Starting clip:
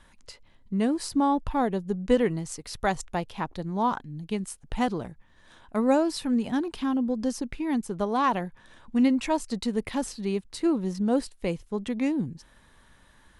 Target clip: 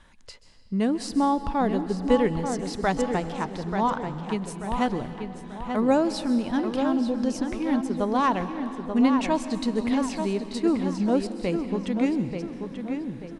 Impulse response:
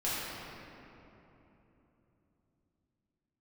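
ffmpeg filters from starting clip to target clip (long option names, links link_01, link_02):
-filter_complex "[0:a]lowpass=8100,asplit=2[link_01][link_02];[link_02]adelay=886,lowpass=frequency=3700:poles=1,volume=-6.5dB,asplit=2[link_03][link_04];[link_04]adelay=886,lowpass=frequency=3700:poles=1,volume=0.42,asplit=2[link_05][link_06];[link_06]adelay=886,lowpass=frequency=3700:poles=1,volume=0.42,asplit=2[link_07][link_08];[link_08]adelay=886,lowpass=frequency=3700:poles=1,volume=0.42,asplit=2[link_09][link_10];[link_10]adelay=886,lowpass=frequency=3700:poles=1,volume=0.42[link_11];[link_01][link_03][link_05][link_07][link_09][link_11]amix=inputs=6:normalize=0,asplit=2[link_12][link_13];[1:a]atrim=start_sample=2205,highshelf=frequency=5100:gain=11,adelay=130[link_14];[link_13][link_14]afir=irnorm=-1:irlink=0,volume=-21.5dB[link_15];[link_12][link_15]amix=inputs=2:normalize=0,volume=1dB"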